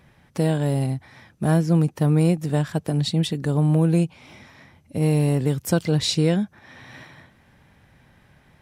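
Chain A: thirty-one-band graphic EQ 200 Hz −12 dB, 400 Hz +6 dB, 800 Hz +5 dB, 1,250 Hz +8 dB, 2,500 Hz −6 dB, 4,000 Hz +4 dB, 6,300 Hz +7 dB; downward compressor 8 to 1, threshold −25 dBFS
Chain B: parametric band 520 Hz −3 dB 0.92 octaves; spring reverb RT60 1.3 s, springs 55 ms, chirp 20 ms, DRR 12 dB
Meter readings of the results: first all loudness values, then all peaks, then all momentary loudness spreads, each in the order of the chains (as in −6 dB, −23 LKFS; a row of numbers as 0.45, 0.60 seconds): −30.0, −22.0 LKFS; −14.5, −9.0 dBFS; 17, 12 LU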